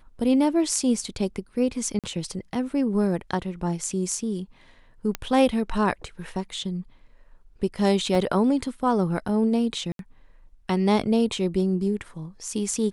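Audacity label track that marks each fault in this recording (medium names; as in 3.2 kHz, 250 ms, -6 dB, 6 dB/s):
1.990000	2.040000	dropout 47 ms
5.150000	5.150000	pop -12 dBFS
8.150000	8.150000	dropout 3 ms
9.920000	9.990000	dropout 72 ms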